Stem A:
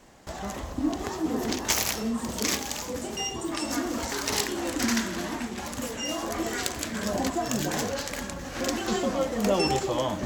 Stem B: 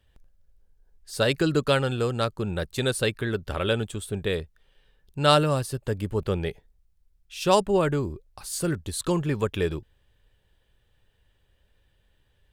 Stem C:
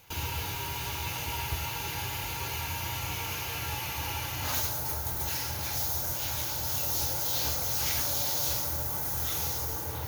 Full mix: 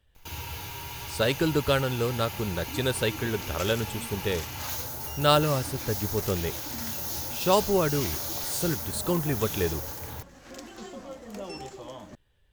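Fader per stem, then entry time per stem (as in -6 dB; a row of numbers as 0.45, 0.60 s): -14.5, -2.0, -3.5 dB; 1.90, 0.00, 0.15 s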